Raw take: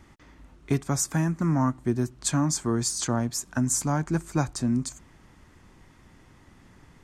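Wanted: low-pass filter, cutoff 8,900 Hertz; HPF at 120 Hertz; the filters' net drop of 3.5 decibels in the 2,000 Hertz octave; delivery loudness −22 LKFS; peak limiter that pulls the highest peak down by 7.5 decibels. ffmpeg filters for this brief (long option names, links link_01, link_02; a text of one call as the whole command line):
ffmpeg -i in.wav -af "highpass=120,lowpass=8900,equalizer=frequency=2000:width_type=o:gain=-5,volume=8dB,alimiter=limit=-11.5dB:level=0:latency=1" out.wav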